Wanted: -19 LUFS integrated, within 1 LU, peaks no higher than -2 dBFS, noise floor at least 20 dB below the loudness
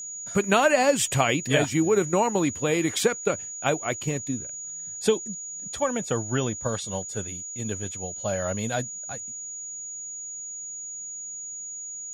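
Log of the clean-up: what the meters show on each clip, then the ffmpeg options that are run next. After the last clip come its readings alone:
steady tone 6.8 kHz; tone level -34 dBFS; loudness -26.5 LUFS; peak level -7.5 dBFS; loudness target -19.0 LUFS
-> -af "bandreject=f=6800:w=30"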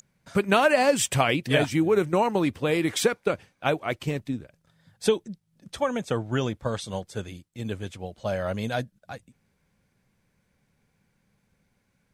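steady tone not found; loudness -26.0 LUFS; peak level -7.5 dBFS; loudness target -19.0 LUFS
-> -af "volume=2.24,alimiter=limit=0.794:level=0:latency=1"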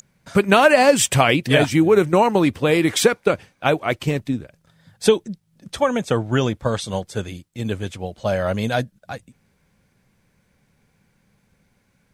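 loudness -19.0 LUFS; peak level -2.0 dBFS; noise floor -65 dBFS

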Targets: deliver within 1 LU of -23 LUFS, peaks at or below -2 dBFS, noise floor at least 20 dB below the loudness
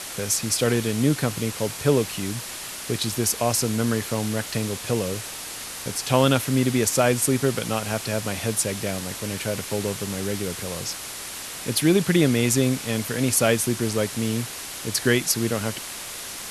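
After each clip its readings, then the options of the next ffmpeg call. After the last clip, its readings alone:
noise floor -35 dBFS; noise floor target -44 dBFS; loudness -24.0 LUFS; peak level -4.0 dBFS; loudness target -23.0 LUFS
-> -af "afftdn=nr=9:nf=-35"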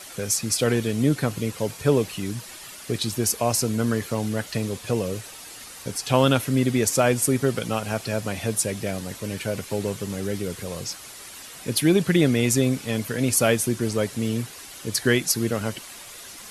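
noise floor -42 dBFS; noise floor target -44 dBFS
-> -af "afftdn=nr=6:nf=-42"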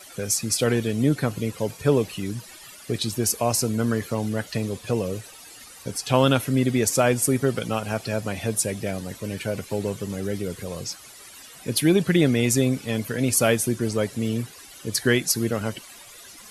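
noise floor -45 dBFS; loudness -24.0 LUFS; peak level -4.5 dBFS; loudness target -23.0 LUFS
-> -af "volume=1.12"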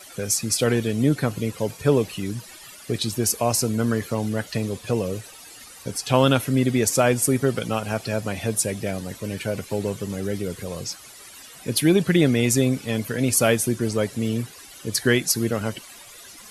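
loudness -23.0 LUFS; peak level -3.5 dBFS; noise floor -44 dBFS

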